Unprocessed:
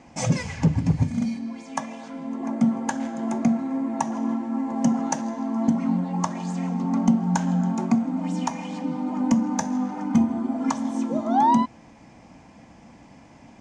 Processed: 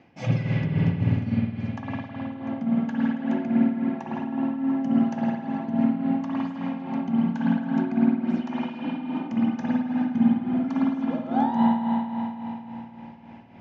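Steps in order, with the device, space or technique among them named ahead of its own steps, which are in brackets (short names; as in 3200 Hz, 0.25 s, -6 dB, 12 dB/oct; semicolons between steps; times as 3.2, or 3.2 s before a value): combo amplifier with spring reverb and tremolo (spring tank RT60 3.7 s, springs 52 ms, chirp 60 ms, DRR -5 dB; tremolo 3.6 Hz, depth 60%; speaker cabinet 87–4300 Hz, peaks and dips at 110 Hz +9 dB, 370 Hz +4 dB, 1000 Hz -7 dB, 1600 Hz +3 dB, 2800 Hz +4 dB); gain -5 dB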